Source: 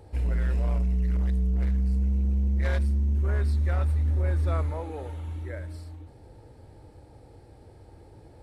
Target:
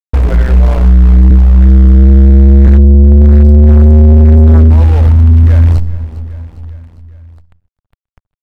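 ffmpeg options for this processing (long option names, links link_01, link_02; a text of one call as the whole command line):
ffmpeg -i in.wav -filter_complex "[0:a]asettb=1/sr,asplit=3[link_01][link_02][link_03];[link_01]atrim=end=1.304[link_04];[link_02]atrim=start=1.3:end=2.67,asetpts=PTS-STARTPTS,afade=type=in:duration=0.004:curve=qsin,afade=type=out:start_time=1.366:duration=0.004:curve=qsin,highpass=40[link_05];[link_03]atrim=start=2.666[link_06];[link_04][link_05]acrossfade=duration=0.004:curve1=hsin:curve2=qsin[link_07];[link_07][link_06]acrossfade=duration=0.004:curve1=qsin:curve2=hsin,bandreject=frequency=60:width_type=h:width=6,bandreject=frequency=120:width_type=h:width=6,bandreject=frequency=180:width_type=h:width=6,bandreject=frequency=240:width_type=h:width=6,agate=range=-20dB:threshold=-39dB:ratio=16:detection=peak,acrusher=bits=7:dc=4:mix=0:aa=0.000001,asubboost=boost=9.5:cutoff=110,asoftclip=type=tanh:threshold=-17.5dB,lowpass=frequency=1200:poles=1,aecho=1:1:404|808|1212|1616:0.0794|0.0461|0.0267|0.0155,acompressor=threshold=-42dB:ratio=1.5,apsyclip=28dB,volume=-1.5dB" out.wav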